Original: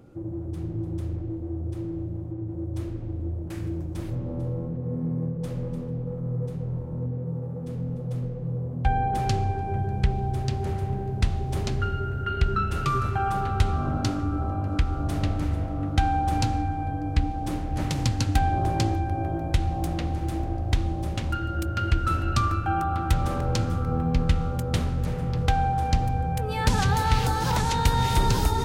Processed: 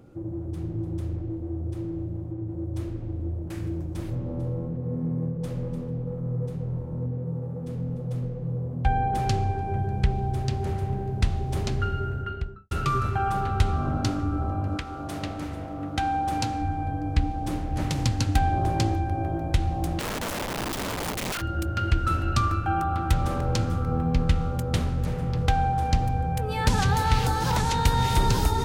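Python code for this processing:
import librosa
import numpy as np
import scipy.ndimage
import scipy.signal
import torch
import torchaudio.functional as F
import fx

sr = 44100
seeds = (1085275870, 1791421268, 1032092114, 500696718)

y = fx.studio_fade_out(x, sr, start_s=12.04, length_s=0.67)
y = fx.highpass(y, sr, hz=fx.line((14.76, 370.0), (16.6, 180.0)), slope=6, at=(14.76, 16.6), fade=0.02)
y = fx.overflow_wrap(y, sr, gain_db=25.5, at=(19.99, 21.4), fade=0.02)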